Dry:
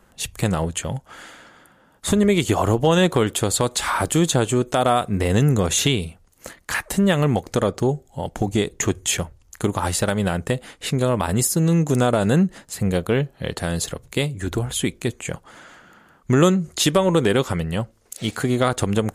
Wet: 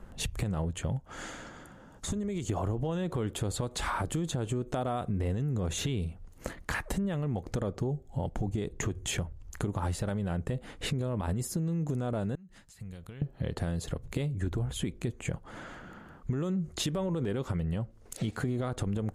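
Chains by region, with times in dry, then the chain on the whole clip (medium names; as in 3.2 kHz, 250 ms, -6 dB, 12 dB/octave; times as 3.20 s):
1.11–2.50 s: peaking EQ 6.6 kHz +10.5 dB + compression, threshold -29 dBFS
12.35–13.22 s: amplifier tone stack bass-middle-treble 5-5-5 + compression 16:1, threshold -45 dBFS
whole clip: tilt EQ -2.5 dB/octave; peak limiter -11.5 dBFS; compression 4:1, threshold -31 dBFS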